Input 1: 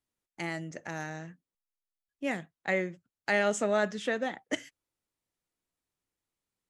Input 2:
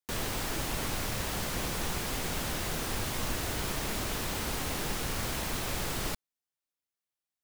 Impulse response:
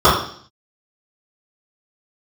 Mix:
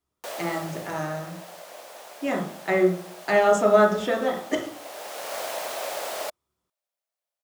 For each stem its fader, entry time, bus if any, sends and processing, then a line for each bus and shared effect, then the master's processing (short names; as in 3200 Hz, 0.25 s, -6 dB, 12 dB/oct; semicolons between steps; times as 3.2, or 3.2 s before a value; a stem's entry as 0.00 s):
+1.0 dB, 0.00 s, send -23.5 dB, dry
+0.5 dB, 0.15 s, no send, resonant high-pass 610 Hz, resonance Q 4.9; auto duck -12 dB, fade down 1.10 s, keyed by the first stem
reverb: on, RT60 0.55 s, pre-delay 3 ms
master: dry